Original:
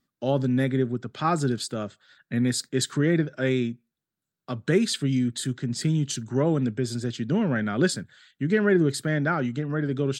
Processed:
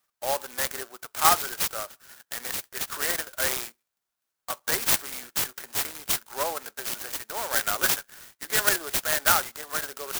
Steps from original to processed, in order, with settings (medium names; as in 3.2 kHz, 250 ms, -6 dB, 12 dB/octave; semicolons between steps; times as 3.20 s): high-pass 770 Hz 24 dB/octave; 1.78–2.88 s: compression 6:1, threshold -36 dBFS, peak gain reduction 12.5 dB; sampling jitter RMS 0.11 ms; trim +7.5 dB